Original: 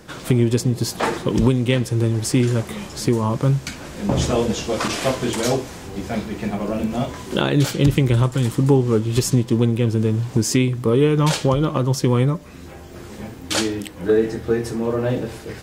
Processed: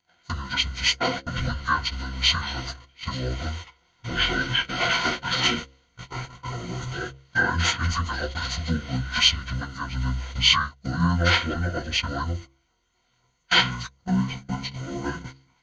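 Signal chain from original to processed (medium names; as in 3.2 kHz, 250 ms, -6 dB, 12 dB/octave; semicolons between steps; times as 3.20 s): frequency-domain pitch shifter -9.5 st; rippled EQ curve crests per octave 2, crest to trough 13 dB; gate -24 dBFS, range -28 dB; formant shift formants -4 st; tilt shelf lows -10 dB, about 650 Hz; de-hum 66.97 Hz, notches 8; trim -2 dB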